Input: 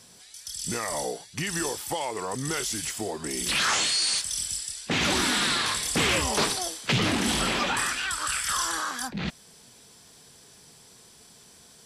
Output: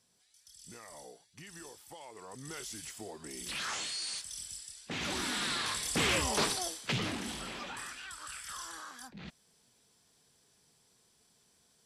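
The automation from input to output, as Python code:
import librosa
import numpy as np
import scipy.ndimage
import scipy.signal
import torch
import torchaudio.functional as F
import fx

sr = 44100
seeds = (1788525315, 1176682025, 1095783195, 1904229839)

y = fx.gain(x, sr, db=fx.line((1.92, -20.0), (2.65, -13.0), (4.85, -13.0), (6.07, -5.5), (6.72, -5.5), (7.39, -16.0)))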